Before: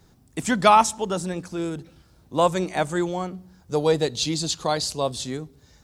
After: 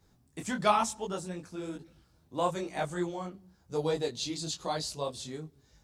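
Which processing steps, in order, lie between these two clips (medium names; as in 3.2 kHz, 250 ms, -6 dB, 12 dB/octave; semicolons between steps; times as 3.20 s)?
detune thickener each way 36 cents; trim -6 dB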